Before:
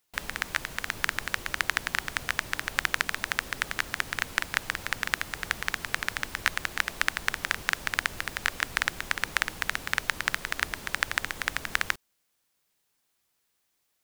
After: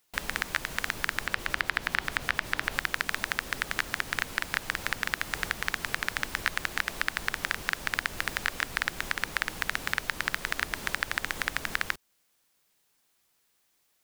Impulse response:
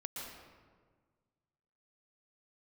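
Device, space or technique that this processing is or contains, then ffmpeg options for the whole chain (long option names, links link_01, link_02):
soft clipper into limiter: -filter_complex "[0:a]asettb=1/sr,asplit=3[link_01][link_02][link_03];[link_01]atrim=end=1.264[link_04];[link_02]atrim=start=1.26:end=2.79,asetpts=PTS-STARTPTS,afade=type=in:duration=0.004:curve=qsin,afade=type=out:start_time=1.526:duration=0.004:curve=qsin,acrossover=split=4700[link_05][link_06];[link_06]acompressor=threshold=-42dB:ratio=4:attack=1:release=60[link_07];[link_05][link_07]amix=inputs=2:normalize=0[link_08];[link_03]atrim=start=2.786[link_09];[link_04][link_08]acrossfade=duration=0.004:curve1=hsin:curve2=qsin[link_10];[link_10][link_09]acrossfade=duration=0.004:curve1=qsin:curve2=hsin,asoftclip=type=tanh:threshold=-6.5dB,alimiter=limit=-12dB:level=0:latency=1:release=240,equalizer=frequency=89:width=1.5:gain=-3,volume=4dB"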